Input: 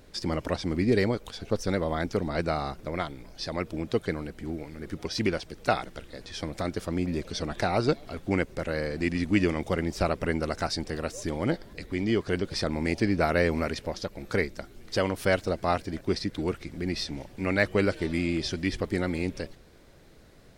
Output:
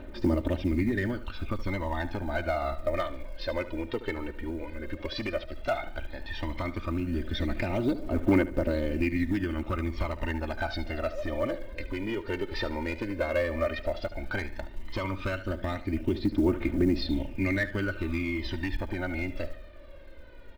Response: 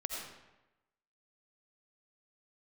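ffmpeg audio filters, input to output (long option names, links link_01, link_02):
-filter_complex "[0:a]lowpass=frequency=3300:width=0.5412,lowpass=frequency=3300:width=1.3066,aecho=1:1:3.3:0.77,acompressor=threshold=-28dB:ratio=4,volume=24dB,asoftclip=hard,volume=-24dB,asplit=2[link_01][link_02];[link_02]aecho=0:1:73|146|219|292:0.2|0.0818|0.0335|0.0138[link_03];[link_01][link_03]amix=inputs=2:normalize=0,aphaser=in_gain=1:out_gain=1:delay=2.3:decay=0.65:speed=0.12:type=triangular,acrusher=bits=9:mode=log:mix=0:aa=0.000001"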